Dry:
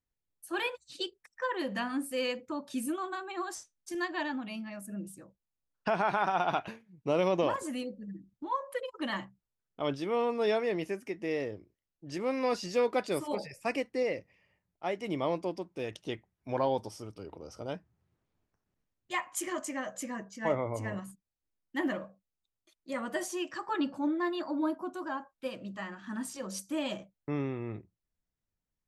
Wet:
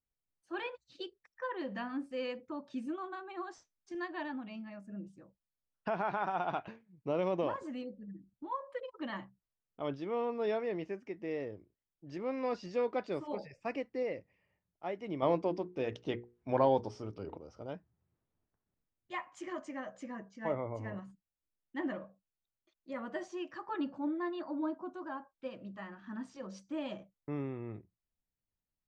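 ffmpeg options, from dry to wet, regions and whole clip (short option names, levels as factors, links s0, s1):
-filter_complex "[0:a]asettb=1/sr,asplit=3[s0][s1][s2];[s0]atrim=end=15.224[s3];[s1]atrim=start=15.22:end=17.38,asetpts=PTS-STARTPTS,afade=t=in:d=0.004:c=qsin,afade=t=out:st=2.156:d=0.004:c=qsin,acontrast=80,bandreject=f=60:t=h:w=6,bandreject=f=120:t=h:w=6,bandreject=f=180:t=h:w=6,bandreject=f=240:t=h:w=6,bandreject=f=300:t=h:w=6,bandreject=f=360:t=h:w=6,bandreject=f=420:t=h:w=6,bandreject=f=480:t=h:w=6[s4];[s2]atrim=start=17.376[s5];[s3][s4]acrossfade=d=0.004:c1=hsin:c2=qsin[s6];[s6][s5]acrossfade=d=0.004:c1=qsin:c2=hsin,lowpass=f=6300:w=0.5412,lowpass=f=6300:w=1.3066,highshelf=f=3100:g=-11.5,volume=0.596"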